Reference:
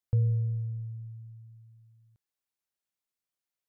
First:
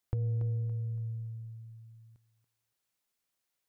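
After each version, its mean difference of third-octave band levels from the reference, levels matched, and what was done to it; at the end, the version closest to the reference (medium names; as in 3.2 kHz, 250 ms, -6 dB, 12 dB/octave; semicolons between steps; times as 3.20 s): 2.5 dB: dynamic bell 110 Hz, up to -6 dB, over -39 dBFS, Q 4.3; compression 5:1, threshold -34 dBFS, peak gain reduction 9 dB; saturation -27.5 dBFS, distortion -22 dB; thinning echo 283 ms, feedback 37%, high-pass 340 Hz, level -7 dB; trim +6 dB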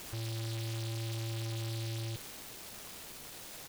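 26.0 dB: one-bit comparator; gain riding; resampled via 11.025 kHz; delay time shaken by noise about 3.5 kHz, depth 0.24 ms; trim -3.5 dB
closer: first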